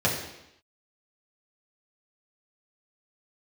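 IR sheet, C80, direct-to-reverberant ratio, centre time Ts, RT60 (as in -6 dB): 7.0 dB, -5.5 dB, 37 ms, 0.85 s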